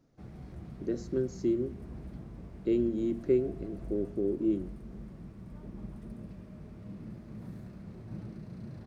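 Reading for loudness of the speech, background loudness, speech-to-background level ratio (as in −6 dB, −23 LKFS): −32.0 LKFS, −46.0 LKFS, 14.0 dB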